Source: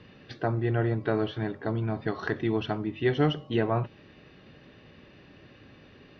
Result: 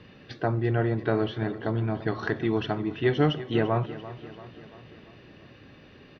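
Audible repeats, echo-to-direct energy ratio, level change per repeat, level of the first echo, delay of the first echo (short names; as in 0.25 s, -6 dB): 4, -13.5 dB, -5.0 dB, -15.0 dB, 0.341 s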